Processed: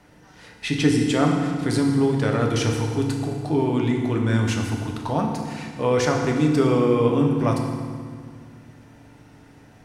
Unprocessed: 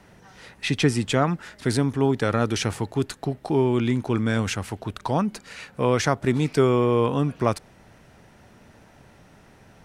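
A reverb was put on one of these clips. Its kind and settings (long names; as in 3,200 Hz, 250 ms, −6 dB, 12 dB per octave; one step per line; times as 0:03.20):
feedback delay network reverb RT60 1.9 s, low-frequency decay 1.5×, high-frequency decay 0.8×, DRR 0.5 dB
level −2.5 dB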